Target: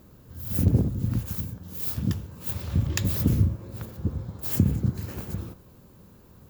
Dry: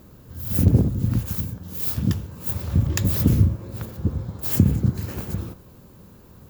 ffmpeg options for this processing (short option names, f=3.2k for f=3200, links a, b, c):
-filter_complex "[0:a]asettb=1/sr,asplit=3[a][b][c];[a]atrim=end=2.414[d];[b]atrim=start=2.41:end=3.13,asetpts=PTS-STARTPTS,afade=t=in:d=0.004:c=qsin,afade=t=out:st=0.716:d=0.004:c=qsin,equalizer=f=3.2k:w=0.74:g=5[e];[c]atrim=start=3.126[f];[d][e]acrossfade=d=0.004:c1=hsin:c2=qsin[g];[g][f]acrossfade=d=0.004:c1=qsin:c2=hsin,volume=-4.5dB"